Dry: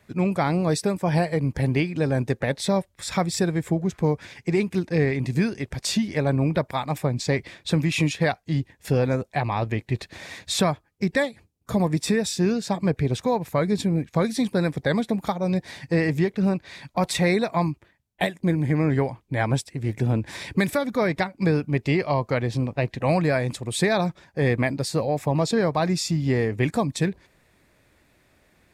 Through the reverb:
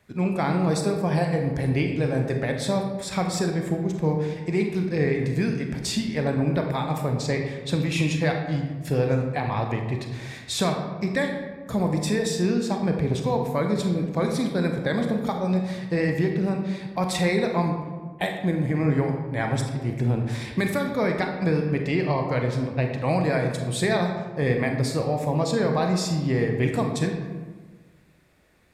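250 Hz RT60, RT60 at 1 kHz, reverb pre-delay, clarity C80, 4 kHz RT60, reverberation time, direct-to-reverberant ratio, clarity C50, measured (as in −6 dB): 1.6 s, 1.3 s, 28 ms, 7.0 dB, 0.75 s, 1.4 s, 3.0 dB, 4.5 dB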